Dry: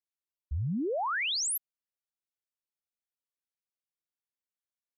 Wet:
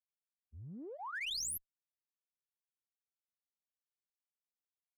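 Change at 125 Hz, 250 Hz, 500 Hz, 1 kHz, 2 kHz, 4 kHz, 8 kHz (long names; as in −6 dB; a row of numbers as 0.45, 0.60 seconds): −17.5, −16.0, −16.0, −13.0, −9.5, −8.0, −8.0 decibels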